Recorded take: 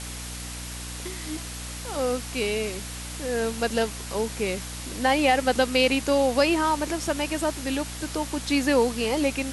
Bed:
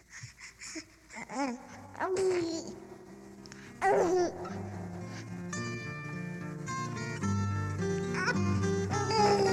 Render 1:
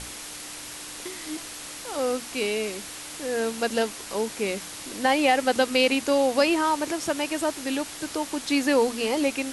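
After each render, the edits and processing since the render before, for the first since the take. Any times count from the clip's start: hum notches 60/120/180/240 Hz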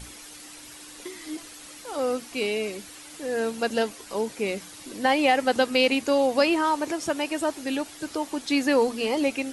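noise reduction 9 dB, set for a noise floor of -39 dBFS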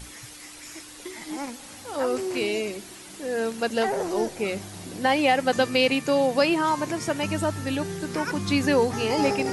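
add bed -1 dB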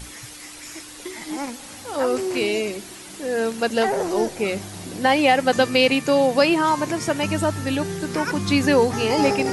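trim +4 dB

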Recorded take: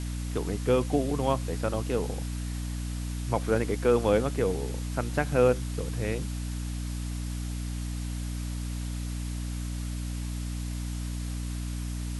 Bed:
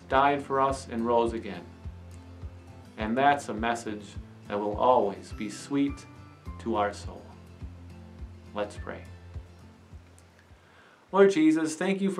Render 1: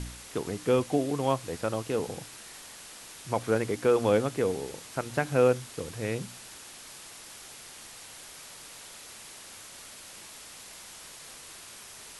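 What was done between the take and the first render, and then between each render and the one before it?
de-hum 60 Hz, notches 5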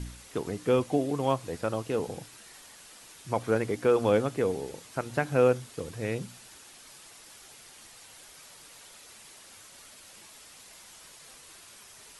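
noise reduction 6 dB, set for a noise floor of -47 dBFS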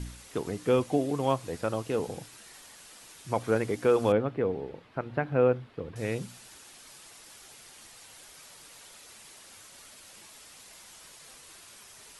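4.12–5.96 s: distance through air 400 m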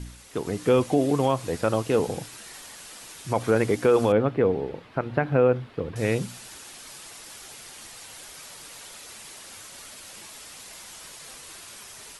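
level rider gain up to 7.5 dB; peak limiter -10.5 dBFS, peak gain reduction 5.5 dB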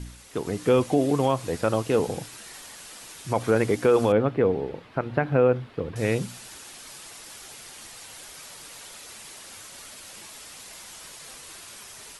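no audible change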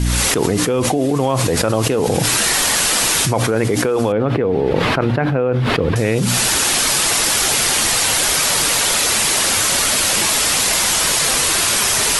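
level flattener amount 100%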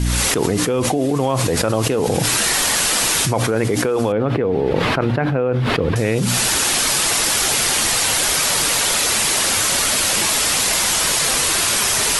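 trim -1.5 dB

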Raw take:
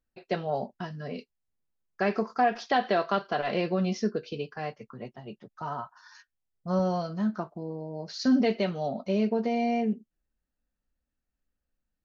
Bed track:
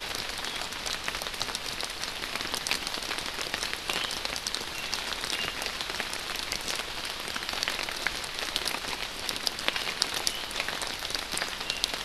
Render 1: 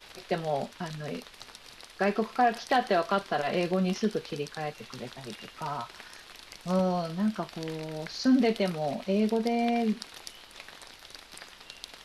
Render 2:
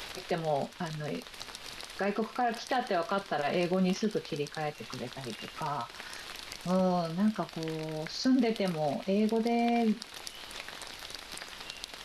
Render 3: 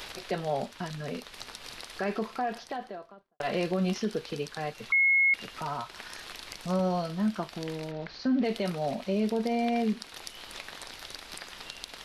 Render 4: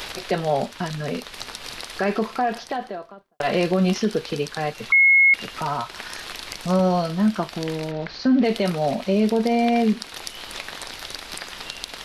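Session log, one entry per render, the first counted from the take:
add bed track -15 dB
peak limiter -19.5 dBFS, peak gain reduction 7 dB; upward compressor, threshold -34 dBFS
2.19–3.40 s: studio fade out; 4.92–5.34 s: bleep 2.17 kHz -19.5 dBFS; 7.91–8.44 s: distance through air 220 m
trim +8.5 dB

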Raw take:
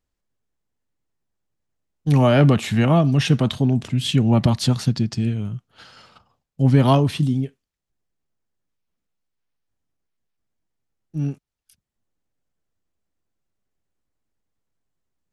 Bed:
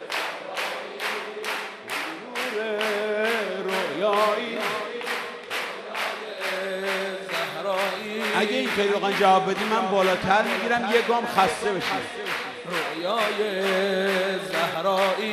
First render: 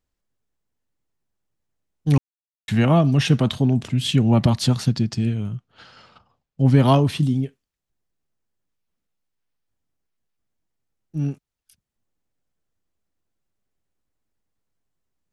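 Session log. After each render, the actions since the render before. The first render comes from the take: 2.18–2.68 s: mute; 5.56–6.66 s: distance through air 74 m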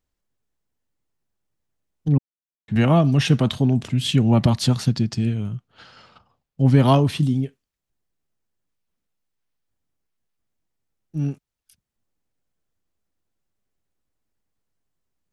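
2.08–2.76 s: band-pass filter 210 Hz, Q 0.7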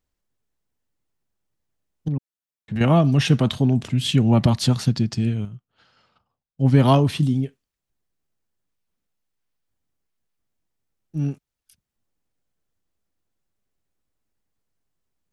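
2.08–2.81 s: compression 2.5:1, threshold -24 dBFS; 5.45–6.76 s: upward expansion, over -36 dBFS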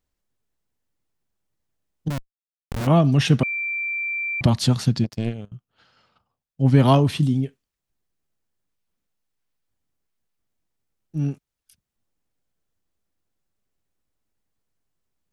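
2.10–2.87 s: Schmitt trigger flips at -22 dBFS; 3.43–4.41 s: bleep 2.35 kHz -23.5 dBFS; 5.04–5.52 s: power-law waveshaper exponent 2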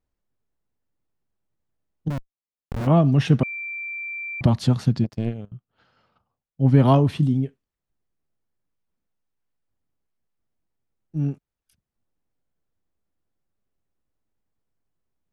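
treble shelf 2.4 kHz -11 dB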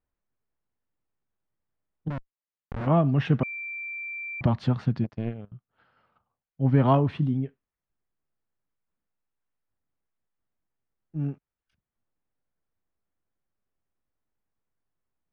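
low-pass 1.7 kHz 12 dB/octave; tilt shelf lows -5.5 dB, about 1.2 kHz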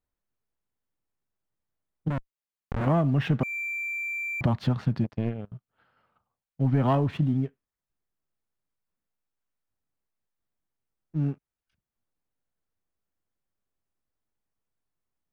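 waveshaping leveller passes 1; compression 2.5:1, threshold -22 dBFS, peak gain reduction 6 dB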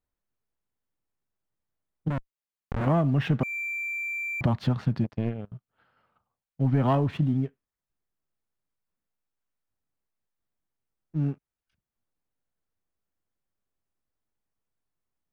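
no audible change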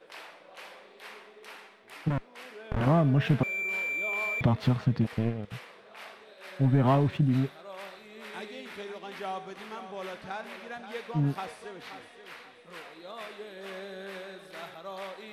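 add bed -18 dB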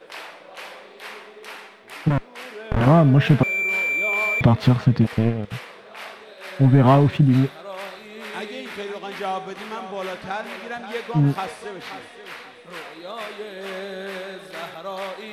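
trim +9 dB

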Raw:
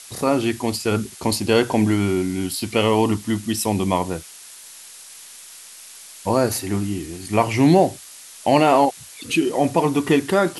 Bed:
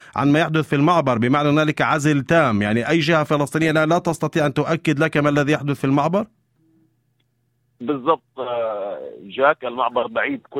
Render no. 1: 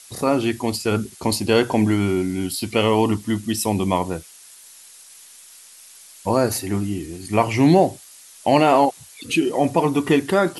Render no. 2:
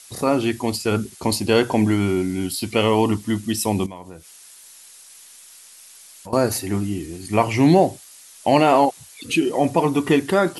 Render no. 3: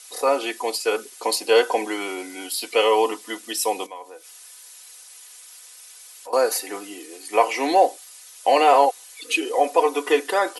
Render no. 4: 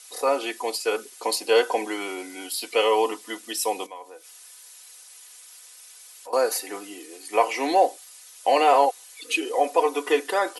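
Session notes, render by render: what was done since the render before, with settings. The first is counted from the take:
noise reduction 6 dB, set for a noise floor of -42 dBFS
3.86–6.33 s: compression 2.5:1, threshold -40 dBFS
Chebyshev high-pass 380 Hz, order 4; comb 4 ms, depth 68%
trim -2.5 dB

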